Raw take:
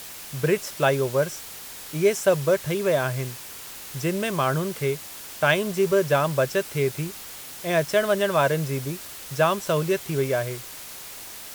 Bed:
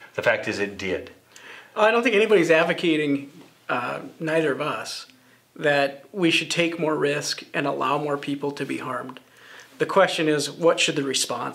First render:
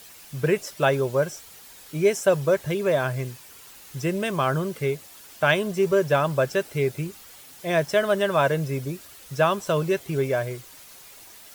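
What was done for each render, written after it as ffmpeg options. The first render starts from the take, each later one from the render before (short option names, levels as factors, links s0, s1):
-af "afftdn=nr=9:nf=-40"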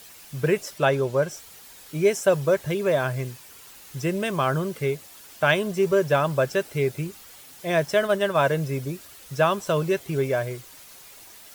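-filter_complex "[0:a]asettb=1/sr,asplit=3[s0][s1][s2];[s0]atrim=end=0.784[s3];[s1]atrim=start=0.78:end=1.31,asetpts=PTS-STARTPTS,afade=t=in:d=0.004:c=qsin,afade=t=out:st=0.526:d=0.004:c=qsin,highshelf=f=11000:g=-9[s4];[s2]atrim=start=1.306[s5];[s3][s4]acrossfade=d=0.004:c1=hsin:c2=qsin[s6];[s6][s5]acrossfade=d=0.004:c1=qsin:c2=hsin,asplit=3[s7][s8][s9];[s7]afade=t=out:st=8.06:d=0.02[s10];[s8]agate=range=0.0224:threshold=0.0631:ratio=3:release=100:detection=peak,afade=t=in:st=8.06:d=0.02,afade=t=out:st=8.48:d=0.02[s11];[s9]afade=t=in:st=8.48:d=0.02[s12];[s10][s11][s12]amix=inputs=3:normalize=0"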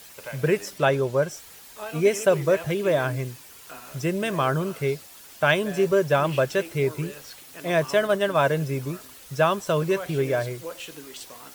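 -filter_complex "[1:a]volume=0.126[s0];[0:a][s0]amix=inputs=2:normalize=0"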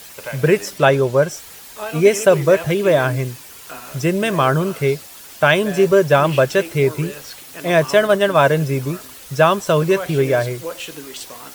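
-af "volume=2.37,alimiter=limit=0.891:level=0:latency=1"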